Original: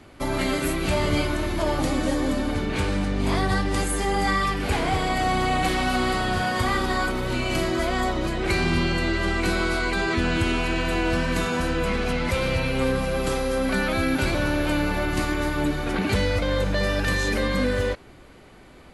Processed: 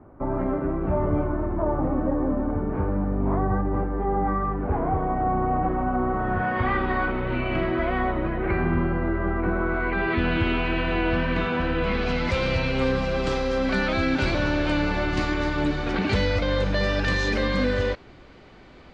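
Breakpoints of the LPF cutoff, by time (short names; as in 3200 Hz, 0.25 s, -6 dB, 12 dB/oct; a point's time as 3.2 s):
LPF 24 dB/oct
6.09 s 1200 Hz
6.66 s 2500 Hz
7.94 s 2500 Hz
8.97 s 1500 Hz
9.62 s 1500 Hz
10.21 s 3300 Hz
11.74 s 3300 Hz
12.17 s 5700 Hz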